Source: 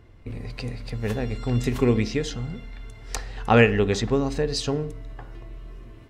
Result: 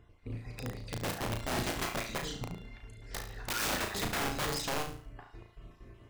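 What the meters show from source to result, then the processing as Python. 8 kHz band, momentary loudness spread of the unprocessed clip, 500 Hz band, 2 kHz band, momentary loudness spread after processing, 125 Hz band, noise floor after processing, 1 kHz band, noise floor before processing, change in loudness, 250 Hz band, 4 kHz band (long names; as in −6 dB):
−1.0 dB, 23 LU, −15.5 dB, −7.5 dB, 19 LU, −14.0 dB, −59 dBFS, −7.5 dB, −46 dBFS, −11.0 dB, −15.0 dB, −4.0 dB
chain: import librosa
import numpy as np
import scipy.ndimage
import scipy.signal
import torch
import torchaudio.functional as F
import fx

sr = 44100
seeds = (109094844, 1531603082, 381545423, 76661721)

y = fx.spec_dropout(x, sr, seeds[0], share_pct=30)
y = (np.mod(10.0 ** (21.0 / 20.0) * y + 1.0, 2.0) - 1.0) / 10.0 ** (21.0 / 20.0)
y = fx.room_flutter(y, sr, wall_m=6.1, rt60_s=0.44)
y = F.gain(torch.from_numpy(y), -7.5).numpy()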